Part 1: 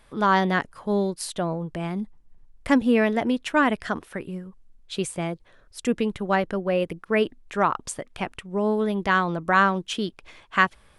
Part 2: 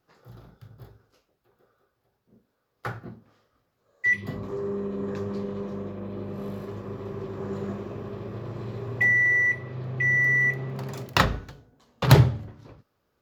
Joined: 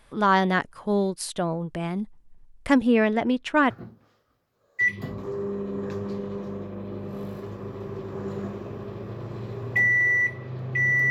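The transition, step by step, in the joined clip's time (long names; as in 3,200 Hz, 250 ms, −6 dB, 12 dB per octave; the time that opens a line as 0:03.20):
part 1
0:02.87–0:03.70: high-frequency loss of the air 59 metres
0:03.70: continue with part 2 from 0:02.95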